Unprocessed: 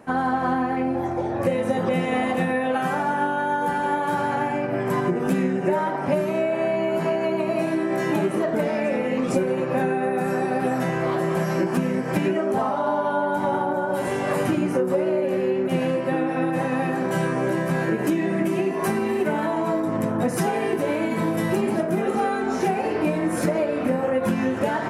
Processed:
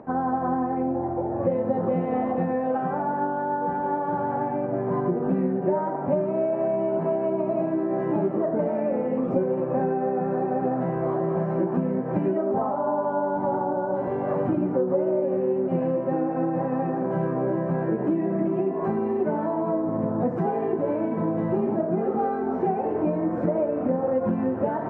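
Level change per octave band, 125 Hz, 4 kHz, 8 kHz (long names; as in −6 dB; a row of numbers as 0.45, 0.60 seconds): −2.0 dB, below −20 dB, below −40 dB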